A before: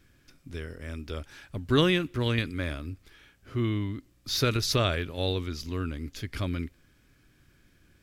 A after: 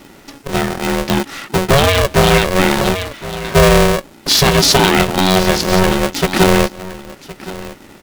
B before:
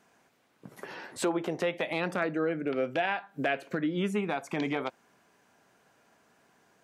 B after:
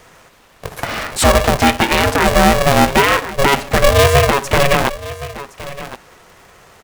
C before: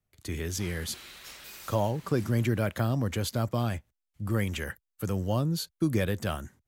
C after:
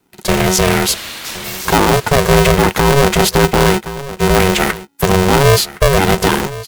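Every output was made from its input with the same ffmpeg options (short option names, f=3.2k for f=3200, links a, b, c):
-af "aecho=1:1:1066:0.133,alimiter=level_in=21dB:limit=-1dB:release=50:level=0:latency=1,aeval=exprs='val(0)*sgn(sin(2*PI*280*n/s))':c=same,volume=-1dB"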